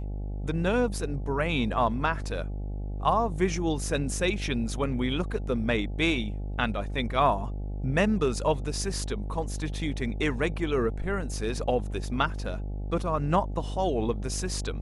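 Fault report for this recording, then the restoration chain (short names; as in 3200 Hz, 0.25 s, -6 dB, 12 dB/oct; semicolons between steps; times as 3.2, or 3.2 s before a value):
buzz 50 Hz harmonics 17 -33 dBFS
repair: de-hum 50 Hz, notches 17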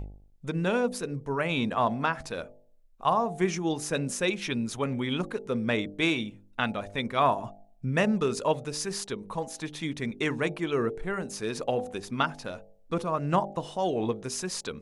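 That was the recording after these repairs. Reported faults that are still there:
none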